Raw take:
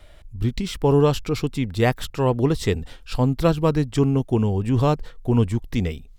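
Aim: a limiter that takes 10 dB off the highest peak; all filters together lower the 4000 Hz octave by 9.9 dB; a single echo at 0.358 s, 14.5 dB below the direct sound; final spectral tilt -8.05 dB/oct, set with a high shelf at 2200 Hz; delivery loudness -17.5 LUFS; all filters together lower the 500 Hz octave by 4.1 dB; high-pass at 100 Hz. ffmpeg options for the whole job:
-af "highpass=100,equalizer=f=500:t=o:g=-4.5,highshelf=f=2.2k:g=-7,equalizer=f=4k:t=o:g=-6.5,alimiter=limit=-18.5dB:level=0:latency=1,aecho=1:1:358:0.188,volume=11dB"

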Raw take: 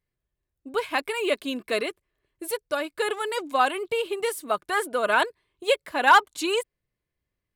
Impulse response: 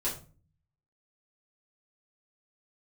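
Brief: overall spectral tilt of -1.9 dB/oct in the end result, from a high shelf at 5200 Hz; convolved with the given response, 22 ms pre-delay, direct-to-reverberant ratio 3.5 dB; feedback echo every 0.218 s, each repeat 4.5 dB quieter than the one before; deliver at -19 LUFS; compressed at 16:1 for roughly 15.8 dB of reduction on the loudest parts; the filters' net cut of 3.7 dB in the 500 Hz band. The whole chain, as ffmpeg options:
-filter_complex "[0:a]equalizer=f=500:t=o:g=-4.5,highshelf=f=5.2k:g=7.5,acompressor=threshold=-27dB:ratio=16,aecho=1:1:218|436|654|872|1090|1308|1526|1744|1962:0.596|0.357|0.214|0.129|0.0772|0.0463|0.0278|0.0167|0.01,asplit=2[a][b];[1:a]atrim=start_sample=2205,adelay=22[c];[b][c]afir=irnorm=-1:irlink=0,volume=-8.5dB[d];[a][d]amix=inputs=2:normalize=0,volume=10.5dB"

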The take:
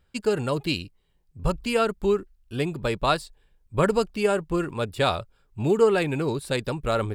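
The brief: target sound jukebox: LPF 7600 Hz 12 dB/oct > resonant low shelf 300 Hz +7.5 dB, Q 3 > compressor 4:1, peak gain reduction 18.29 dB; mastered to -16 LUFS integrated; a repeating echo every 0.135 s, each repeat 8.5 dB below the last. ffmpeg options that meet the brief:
-af "lowpass=7.6k,lowshelf=f=300:t=q:w=3:g=7.5,aecho=1:1:135|270|405|540:0.376|0.143|0.0543|0.0206,acompressor=threshold=-33dB:ratio=4,volume=19dB"

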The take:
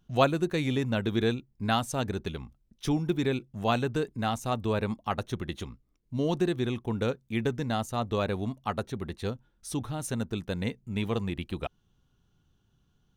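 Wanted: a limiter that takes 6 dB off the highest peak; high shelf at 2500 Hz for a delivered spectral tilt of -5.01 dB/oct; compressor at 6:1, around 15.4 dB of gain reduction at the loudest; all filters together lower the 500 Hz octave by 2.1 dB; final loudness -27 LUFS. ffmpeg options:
-af "equalizer=f=500:t=o:g=-3,highshelf=f=2.5k:g=4.5,acompressor=threshold=-34dB:ratio=6,volume=14dB,alimiter=limit=-14.5dB:level=0:latency=1"

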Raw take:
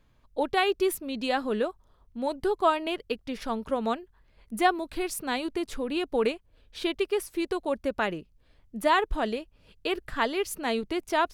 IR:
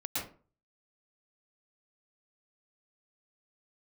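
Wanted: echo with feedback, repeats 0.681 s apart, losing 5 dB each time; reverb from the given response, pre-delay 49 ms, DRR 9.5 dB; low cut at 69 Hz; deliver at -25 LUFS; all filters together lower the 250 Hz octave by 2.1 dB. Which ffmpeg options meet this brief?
-filter_complex "[0:a]highpass=69,equalizer=f=250:t=o:g=-3,aecho=1:1:681|1362|2043|2724|3405|4086|4767:0.562|0.315|0.176|0.0988|0.0553|0.031|0.0173,asplit=2[a][b];[1:a]atrim=start_sample=2205,adelay=49[c];[b][c]afir=irnorm=-1:irlink=0,volume=-13.5dB[d];[a][d]amix=inputs=2:normalize=0,volume=3dB"

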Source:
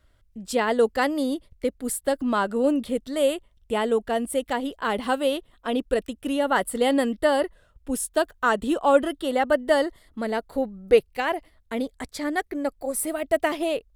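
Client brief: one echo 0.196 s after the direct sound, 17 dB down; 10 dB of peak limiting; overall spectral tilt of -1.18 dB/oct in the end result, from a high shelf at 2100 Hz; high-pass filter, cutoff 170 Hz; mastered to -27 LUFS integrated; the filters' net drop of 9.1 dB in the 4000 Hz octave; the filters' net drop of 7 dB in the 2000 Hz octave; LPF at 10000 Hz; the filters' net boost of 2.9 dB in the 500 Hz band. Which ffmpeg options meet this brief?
-af "highpass=170,lowpass=10k,equalizer=f=500:t=o:g=4,equalizer=f=2k:t=o:g=-6,highshelf=f=2.1k:g=-5,equalizer=f=4k:t=o:g=-5,alimiter=limit=-13.5dB:level=0:latency=1,aecho=1:1:196:0.141,volume=-1.5dB"

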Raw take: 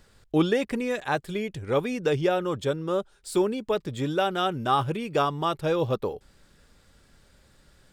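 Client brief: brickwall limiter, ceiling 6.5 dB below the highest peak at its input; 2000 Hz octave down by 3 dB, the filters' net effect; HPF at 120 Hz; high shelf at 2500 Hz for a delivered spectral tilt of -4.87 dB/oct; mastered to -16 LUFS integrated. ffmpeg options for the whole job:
-af "highpass=120,equalizer=f=2k:t=o:g=-6,highshelf=f=2.5k:g=3.5,volume=13dB,alimiter=limit=-4dB:level=0:latency=1"

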